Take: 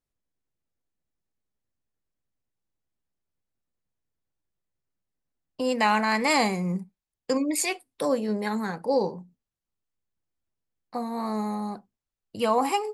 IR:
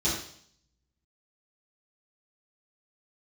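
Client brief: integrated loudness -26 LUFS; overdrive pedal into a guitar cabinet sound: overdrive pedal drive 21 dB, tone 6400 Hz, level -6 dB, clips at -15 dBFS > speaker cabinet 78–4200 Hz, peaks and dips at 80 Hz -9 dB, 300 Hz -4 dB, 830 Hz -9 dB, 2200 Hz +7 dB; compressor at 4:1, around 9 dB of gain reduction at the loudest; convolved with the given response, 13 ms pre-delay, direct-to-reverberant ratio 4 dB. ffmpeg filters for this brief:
-filter_complex "[0:a]acompressor=threshold=-29dB:ratio=4,asplit=2[a][b];[1:a]atrim=start_sample=2205,adelay=13[c];[b][c]afir=irnorm=-1:irlink=0,volume=-13.5dB[d];[a][d]amix=inputs=2:normalize=0,asplit=2[e][f];[f]highpass=f=720:p=1,volume=21dB,asoftclip=type=tanh:threshold=-15dB[g];[e][g]amix=inputs=2:normalize=0,lowpass=f=6.4k:p=1,volume=-6dB,highpass=78,equalizer=f=80:t=q:w=4:g=-9,equalizer=f=300:t=q:w=4:g=-4,equalizer=f=830:t=q:w=4:g=-9,equalizer=f=2.2k:t=q:w=4:g=7,lowpass=f=4.2k:w=0.5412,lowpass=f=4.2k:w=1.3066,volume=-1.5dB"

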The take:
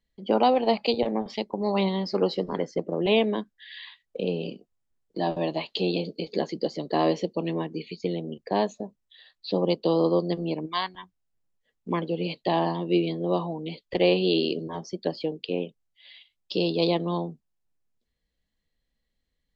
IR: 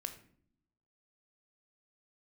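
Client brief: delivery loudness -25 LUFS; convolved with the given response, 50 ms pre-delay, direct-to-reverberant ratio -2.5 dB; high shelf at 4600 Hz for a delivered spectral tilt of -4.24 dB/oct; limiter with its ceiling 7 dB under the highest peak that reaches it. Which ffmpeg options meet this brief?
-filter_complex "[0:a]highshelf=f=4.6k:g=8,alimiter=limit=-14.5dB:level=0:latency=1,asplit=2[a][b];[1:a]atrim=start_sample=2205,adelay=50[c];[b][c]afir=irnorm=-1:irlink=0,volume=4.5dB[d];[a][d]amix=inputs=2:normalize=0,volume=-1.5dB"

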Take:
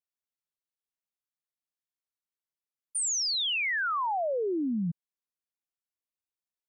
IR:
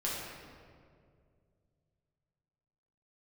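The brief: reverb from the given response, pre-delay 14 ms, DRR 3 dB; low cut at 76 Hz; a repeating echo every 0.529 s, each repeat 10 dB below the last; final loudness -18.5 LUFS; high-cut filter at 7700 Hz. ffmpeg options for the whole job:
-filter_complex "[0:a]highpass=76,lowpass=7.7k,aecho=1:1:529|1058|1587|2116:0.316|0.101|0.0324|0.0104,asplit=2[a][b];[1:a]atrim=start_sample=2205,adelay=14[c];[b][c]afir=irnorm=-1:irlink=0,volume=-8dB[d];[a][d]amix=inputs=2:normalize=0,volume=8.5dB"

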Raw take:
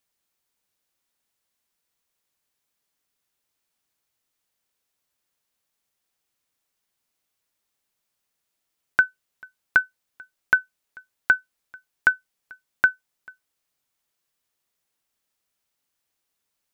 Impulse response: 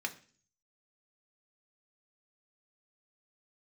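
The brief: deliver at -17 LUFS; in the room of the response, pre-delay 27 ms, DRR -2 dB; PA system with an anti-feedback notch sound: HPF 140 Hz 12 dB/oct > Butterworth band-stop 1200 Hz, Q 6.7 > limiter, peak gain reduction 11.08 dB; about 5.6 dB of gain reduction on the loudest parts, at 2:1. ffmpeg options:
-filter_complex "[0:a]acompressor=threshold=-23dB:ratio=2,asplit=2[a][b];[1:a]atrim=start_sample=2205,adelay=27[c];[b][c]afir=irnorm=-1:irlink=0,volume=-0.5dB[d];[a][d]amix=inputs=2:normalize=0,highpass=140,asuperstop=centerf=1200:order=8:qfactor=6.7,volume=16.5dB,alimiter=limit=-2.5dB:level=0:latency=1"

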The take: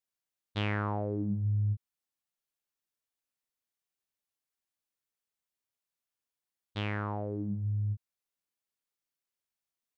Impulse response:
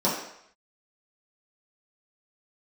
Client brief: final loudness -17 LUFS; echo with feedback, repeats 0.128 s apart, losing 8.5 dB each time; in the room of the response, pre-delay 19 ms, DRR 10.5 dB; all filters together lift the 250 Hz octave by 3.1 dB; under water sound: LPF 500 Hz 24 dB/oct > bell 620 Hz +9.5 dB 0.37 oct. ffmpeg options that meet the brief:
-filter_complex "[0:a]equalizer=f=250:t=o:g=4,aecho=1:1:128|256|384|512:0.376|0.143|0.0543|0.0206,asplit=2[a][b];[1:a]atrim=start_sample=2205,adelay=19[c];[b][c]afir=irnorm=-1:irlink=0,volume=-24.5dB[d];[a][d]amix=inputs=2:normalize=0,lowpass=f=500:w=0.5412,lowpass=f=500:w=1.3066,equalizer=f=620:t=o:w=0.37:g=9.5,volume=15.5dB"

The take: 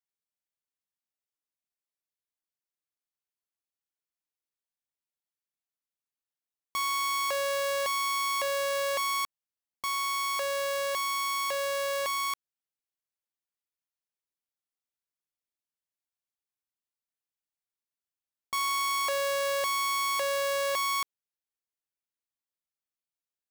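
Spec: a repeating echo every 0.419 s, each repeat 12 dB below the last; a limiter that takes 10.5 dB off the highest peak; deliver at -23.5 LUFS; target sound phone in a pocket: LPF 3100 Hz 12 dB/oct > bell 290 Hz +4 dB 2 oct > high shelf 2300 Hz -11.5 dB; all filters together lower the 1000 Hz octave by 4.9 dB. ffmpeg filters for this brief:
-af "equalizer=f=1k:t=o:g=-3.5,alimiter=level_in=9.5dB:limit=-24dB:level=0:latency=1,volume=-9.5dB,lowpass=3.1k,equalizer=f=290:t=o:w=2:g=4,highshelf=f=2.3k:g=-11.5,aecho=1:1:419|838|1257:0.251|0.0628|0.0157,volume=18.5dB"

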